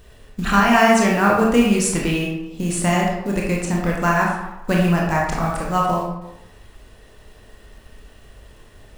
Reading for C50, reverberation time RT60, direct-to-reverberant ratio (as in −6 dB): 1.5 dB, 0.95 s, −3.0 dB